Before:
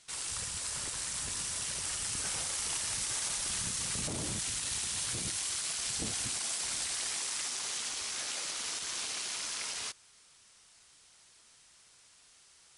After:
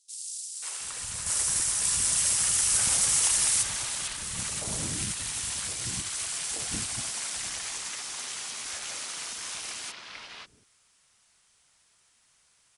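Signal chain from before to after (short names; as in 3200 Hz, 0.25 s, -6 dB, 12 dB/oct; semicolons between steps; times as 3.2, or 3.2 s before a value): 1.26–3.63 high shelf 5300 Hz +8 dB; three bands offset in time highs, mids, lows 0.54/0.72 s, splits 380/4400 Hz; upward expander 1.5:1, over -50 dBFS; gain +7 dB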